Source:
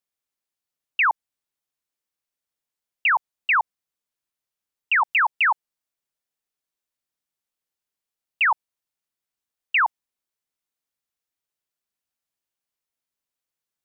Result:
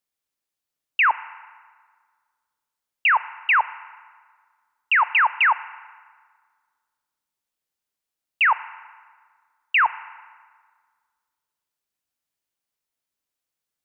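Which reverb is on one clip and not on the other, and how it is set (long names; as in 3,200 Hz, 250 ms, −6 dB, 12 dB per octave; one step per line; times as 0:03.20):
feedback delay network reverb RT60 1.7 s, low-frequency decay 1×, high-frequency decay 0.7×, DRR 15 dB
level +1.5 dB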